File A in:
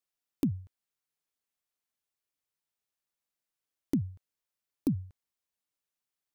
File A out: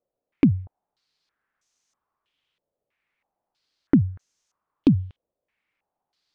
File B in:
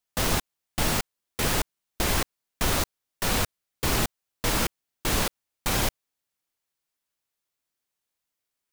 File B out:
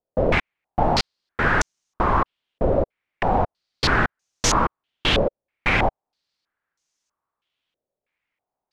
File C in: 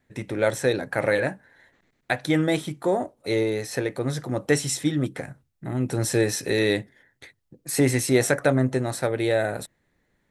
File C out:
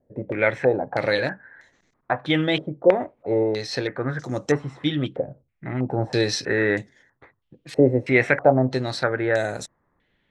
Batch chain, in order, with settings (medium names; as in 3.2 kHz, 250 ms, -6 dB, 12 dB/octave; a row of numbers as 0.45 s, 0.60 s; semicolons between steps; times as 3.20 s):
step-sequenced low-pass 3.1 Hz 560–6300 Hz; normalise loudness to -23 LUFS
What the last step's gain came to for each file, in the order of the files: +11.5 dB, +4.0 dB, -0.5 dB